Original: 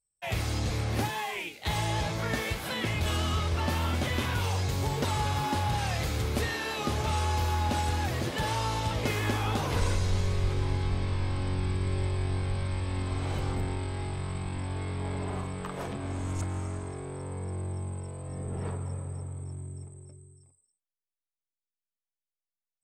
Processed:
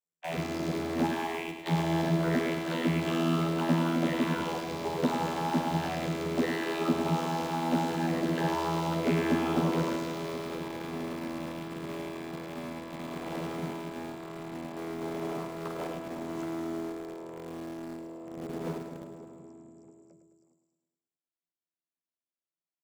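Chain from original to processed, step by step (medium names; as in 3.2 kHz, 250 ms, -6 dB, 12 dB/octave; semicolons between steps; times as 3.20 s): vocoder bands 32, saw 82.6 Hz; in parallel at -9.5 dB: word length cut 6-bit, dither none; on the sum: feedback delay 106 ms, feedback 58%, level -8.5 dB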